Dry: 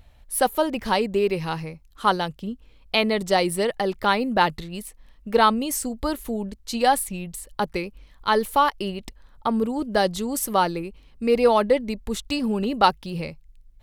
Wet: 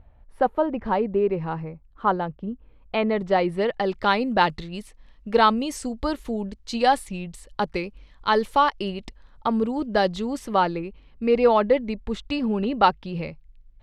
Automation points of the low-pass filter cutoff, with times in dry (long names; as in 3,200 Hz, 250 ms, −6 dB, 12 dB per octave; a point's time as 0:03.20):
0:02.46 1,300 Hz
0:03.53 2,200 Hz
0:03.97 5,500 Hz
0:09.49 5,500 Hz
0:10.64 3,200 Hz